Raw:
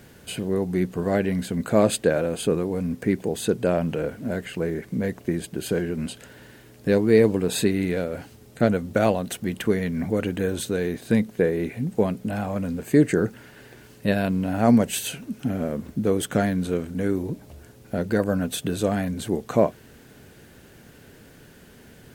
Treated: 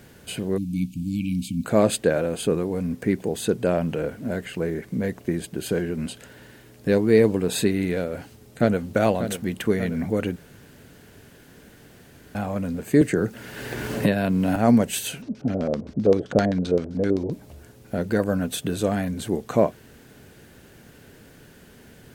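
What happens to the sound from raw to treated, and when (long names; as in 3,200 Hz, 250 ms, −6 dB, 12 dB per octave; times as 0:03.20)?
0:00.58–0:01.64: time-frequency box erased 310–2,200 Hz
0:08.01–0:08.82: delay throw 590 ms, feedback 65%, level −9.5 dB
0:10.36–0:12.35: fill with room tone
0:13.01–0:14.56: multiband upward and downward compressor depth 100%
0:15.22–0:17.32: auto-filter low-pass square 7.7 Hz 580–5,000 Hz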